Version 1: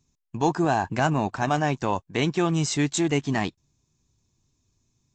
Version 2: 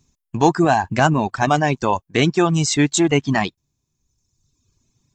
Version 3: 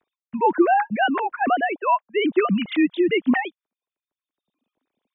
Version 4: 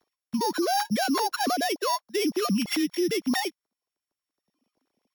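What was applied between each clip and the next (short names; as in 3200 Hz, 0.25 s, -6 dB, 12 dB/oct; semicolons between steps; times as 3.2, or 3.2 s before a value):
reverb removal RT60 1.2 s; gain +8 dB
sine-wave speech; gain -3 dB
sample sorter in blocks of 8 samples; compressor, threshold -20 dBFS, peak gain reduction 8.5 dB; limiter -21.5 dBFS, peak gain reduction 8 dB; gain +2.5 dB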